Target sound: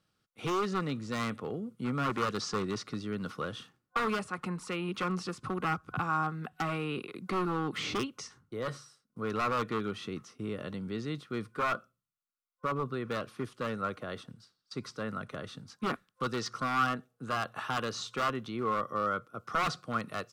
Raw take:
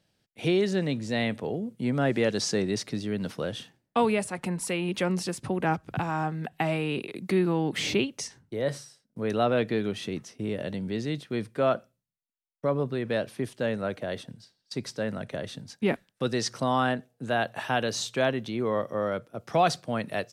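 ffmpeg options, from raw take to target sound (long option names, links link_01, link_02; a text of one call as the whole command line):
ffmpeg -i in.wav -filter_complex "[0:a]acrossover=split=6800[link_01][link_02];[link_02]acompressor=threshold=-57dB:ratio=4:attack=1:release=60[link_03];[link_01][link_03]amix=inputs=2:normalize=0,aeval=exprs='0.0891*(abs(mod(val(0)/0.0891+3,4)-2)-1)':channel_layout=same,superequalizer=8b=0.631:10b=3.98,volume=-5.5dB" out.wav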